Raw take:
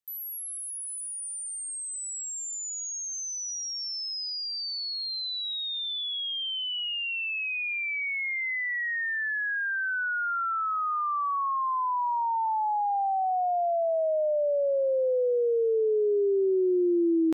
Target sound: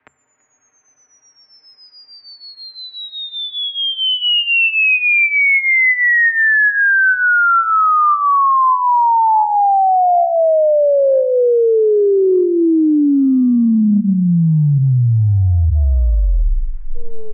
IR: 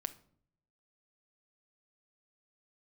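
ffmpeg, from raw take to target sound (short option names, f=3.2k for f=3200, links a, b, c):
-filter_complex "[0:a]asetrate=27781,aresample=44100,atempo=1.5874,asplit=2[a][b];[b]aecho=0:1:335:0.075[c];[a][c]amix=inputs=2:normalize=0,afreqshift=14,highpass=f=200:w=0.5412,highpass=f=200:w=1.3066,bandreject=f=60:t=h:w=6,bandreject=f=120:t=h:w=6,bandreject=f=180:t=h:w=6,bandreject=f=240:t=h:w=6,bandreject=f=300:t=h:w=6,bandreject=f=360:t=h:w=6,bandreject=f=420:t=h:w=6,aecho=1:1:6.1:0.78,apsyclip=28dB,highpass=f=330:t=q:w=0.5412,highpass=f=330:t=q:w=1.307,lowpass=f=2.4k:t=q:w=0.5176,lowpass=f=2.4k:t=q:w=0.7071,lowpass=f=2.4k:t=q:w=1.932,afreqshift=-220,areverse,acompressor=threshold=-15dB:ratio=16,areverse,volume=4.5dB"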